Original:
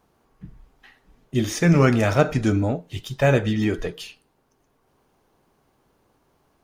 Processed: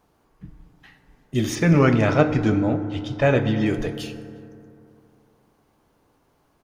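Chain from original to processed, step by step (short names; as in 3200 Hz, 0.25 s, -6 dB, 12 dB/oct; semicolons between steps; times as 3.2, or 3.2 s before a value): 1.55–3.66 LPF 4400 Hz 12 dB/oct; outdoor echo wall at 61 m, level -27 dB; FDN reverb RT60 2.7 s, high-frequency decay 0.35×, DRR 9 dB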